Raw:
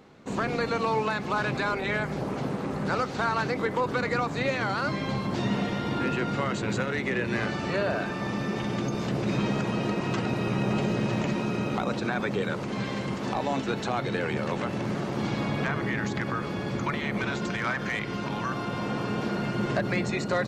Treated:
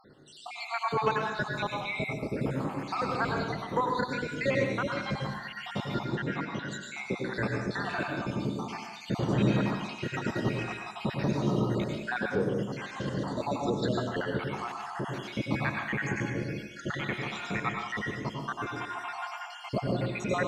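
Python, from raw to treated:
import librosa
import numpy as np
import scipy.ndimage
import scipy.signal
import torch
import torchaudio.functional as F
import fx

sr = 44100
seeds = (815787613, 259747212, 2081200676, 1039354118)

y = fx.spec_dropout(x, sr, seeds[0], share_pct=74)
y = fx.bandpass_edges(y, sr, low_hz=100.0, high_hz=4100.0, at=(6.04, 6.62))
y = fx.rev_plate(y, sr, seeds[1], rt60_s=0.84, hf_ratio=0.85, predelay_ms=85, drr_db=1.0)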